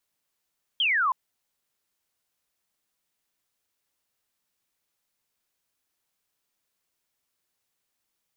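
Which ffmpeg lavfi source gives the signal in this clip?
ffmpeg -f lavfi -i "aevalsrc='0.0944*clip(t/0.002,0,1)*clip((0.32-t)/0.002,0,1)*sin(2*PI*3300*0.32/log(970/3300)*(exp(log(970/3300)*t/0.32)-1))':duration=0.32:sample_rate=44100" out.wav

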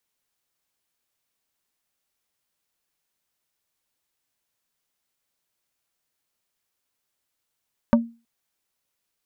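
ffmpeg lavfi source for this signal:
ffmpeg -f lavfi -i "aevalsrc='0.316*pow(10,-3*t/0.31)*sin(2*PI*232*t)+0.2*pow(10,-3*t/0.103)*sin(2*PI*580*t)+0.126*pow(10,-3*t/0.059)*sin(2*PI*928*t)+0.0794*pow(10,-3*t/0.045)*sin(2*PI*1160*t)+0.0501*pow(10,-3*t/0.033)*sin(2*PI*1508*t)':duration=0.32:sample_rate=44100" out.wav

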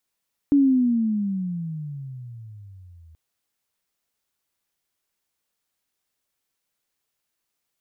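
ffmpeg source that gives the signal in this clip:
ffmpeg -f lavfi -i "aevalsrc='pow(10,(-12.5-33.5*t/2.63)/20)*sin(2*PI*288*2.63/(-22.5*log(2)/12)*(exp(-22.5*log(2)/12*t/2.63)-1))':duration=2.63:sample_rate=44100" out.wav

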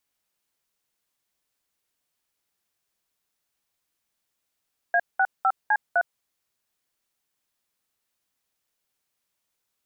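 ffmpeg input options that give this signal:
ffmpeg -f lavfi -i "aevalsrc='0.1*clip(min(mod(t,0.254),0.057-mod(t,0.254))/0.002,0,1)*(eq(floor(t/0.254),0)*(sin(2*PI*697*mod(t,0.254))+sin(2*PI*1633*mod(t,0.254)))+eq(floor(t/0.254),1)*(sin(2*PI*770*mod(t,0.254))+sin(2*PI*1477*mod(t,0.254)))+eq(floor(t/0.254),2)*(sin(2*PI*770*mod(t,0.254))+sin(2*PI*1336*mod(t,0.254)))+eq(floor(t/0.254),3)*(sin(2*PI*852*mod(t,0.254))+sin(2*PI*1633*mod(t,0.254)))+eq(floor(t/0.254),4)*(sin(2*PI*697*mod(t,0.254))+sin(2*PI*1477*mod(t,0.254))))':duration=1.27:sample_rate=44100" out.wav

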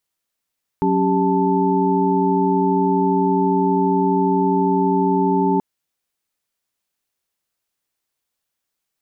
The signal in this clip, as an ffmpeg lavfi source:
ffmpeg -f lavfi -i "aevalsrc='0.1*(sin(2*PI*185*t)+sin(2*PI*277.18*t)+sin(2*PI*392*t)+sin(2*PI*880*t))':duration=4.78:sample_rate=44100" out.wav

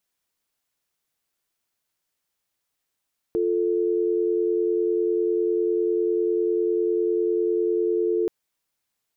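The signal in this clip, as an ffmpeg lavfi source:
ffmpeg -f lavfi -i "aevalsrc='0.075*(sin(2*PI*350*t)+sin(2*PI*440*t))':duration=4.93:sample_rate=44100" out.wav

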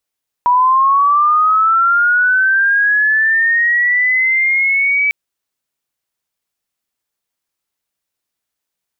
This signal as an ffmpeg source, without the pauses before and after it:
ffmpeg -f lavfi -i "aevalsrc='pow(10,(-8-3*t/4.65)/20)*sin(2*PI*(970*t+1330*t*t/(2*4.65)))':duration=4.65:sample_rate=44100" out.wav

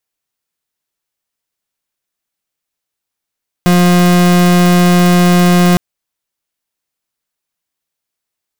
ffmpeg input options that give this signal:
ffmpeg -f lavfi -i "aevalsrc='0.398*(2*lt(mod(177*t,1),0.39)-1)':duration=2.11:sample_rate=44100" out.wav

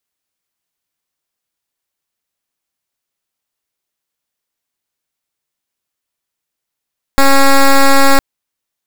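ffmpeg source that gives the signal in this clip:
ffmpeg -f lavfi -i "aevalsrc='0.501*(2*lt(mod(274*t,1),0.09)-1)':duration=1.01:sample_rate=44100" out.wav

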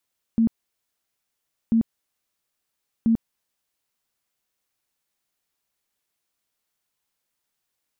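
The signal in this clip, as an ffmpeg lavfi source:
ffmpeg -f lavfi -i "aevalsrc='0.178*sin(2*PI*227*mod(t,1.34))*lt(mod(t,1.34),21/227)':duration=4.02:sample_rate=44100" out.wav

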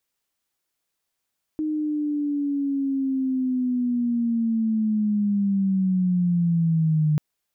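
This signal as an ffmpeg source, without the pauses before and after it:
ffmpeg -f lavfi -i "aevalsrc='pow(10,(-22.5+5.5*t/5.59)/20)*sin(2*PI*(310*t-160*t*t/(2*5.59)))':duration=5.59:sample_rate=44100" out.wav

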